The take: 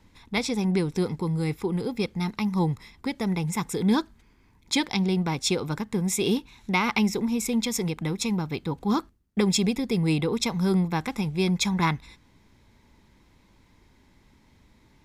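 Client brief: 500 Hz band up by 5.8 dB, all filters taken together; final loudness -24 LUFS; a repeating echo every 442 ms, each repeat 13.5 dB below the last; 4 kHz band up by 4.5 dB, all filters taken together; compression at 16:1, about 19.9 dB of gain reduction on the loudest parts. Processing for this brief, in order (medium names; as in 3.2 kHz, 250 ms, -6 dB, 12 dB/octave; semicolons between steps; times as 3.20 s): peaking EQ 500 Hz +7.5 dB; peaking EQ 4 kHz +5.5 dB; compression 16:1, threshold -35 dBFS; feedback delay 442 ms, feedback 21%, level -13.5 dB; trim +15 dB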